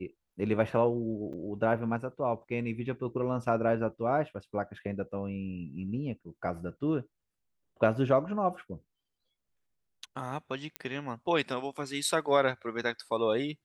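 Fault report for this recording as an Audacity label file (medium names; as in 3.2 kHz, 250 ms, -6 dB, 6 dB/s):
1.330000	1.340000	dropout 6.8 ms
10.760000	10.760000	pop -19 dBFS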